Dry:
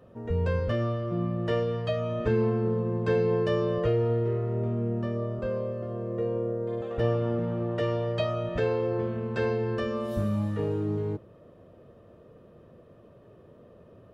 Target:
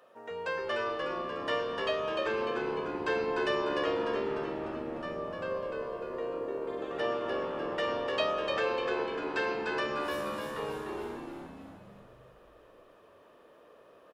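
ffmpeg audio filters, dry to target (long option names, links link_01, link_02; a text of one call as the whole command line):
ffmpeg -i in.wav -filter_complex "[0:a]highpass=810,asplit=8[link_01][link_02][link_03][link_04][link_05][link_06][link_07][link_08];[link_02]adelay=299,afreqshift=-72,volume=-4dB[link_09];[link_03]adelay=598,afreqshift=-144,volume=-9.5dB[link_10];[link_04]adelay=897,afreqshift=-216,volume=-15dB[link_11];[link_05]adelay=1196,afreqshift=-288,volume=-20.5dB[link_12];[link_06]adelay=1495,afreqshift=-360,volume=-26.1dB[link_13];[link_07]adelay=1794,afreqshift=-432,volume=-31.6dB[link_14];[link_08]adelay=2093,afreqshift=-504,volume=-37.1dB[link_15];[link_01][link_09][link_10][link_11][link_12][link_13][link_14][link_15]amix=inputs=8:normalize=0,volume=3.5dB" out.wav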